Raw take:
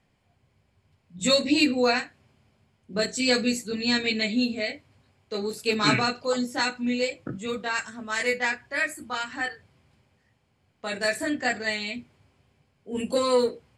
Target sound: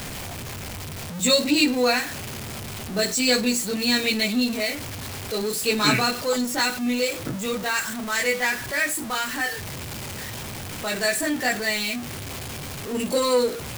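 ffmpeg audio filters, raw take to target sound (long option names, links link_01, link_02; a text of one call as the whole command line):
ffmpeg -i in.wav -af "aeval=exprs='val(0)+0.5*0.0355*sgn(val(0))':channel_layout=same,highshelf=frequency=6200:gain=7.5" out.wav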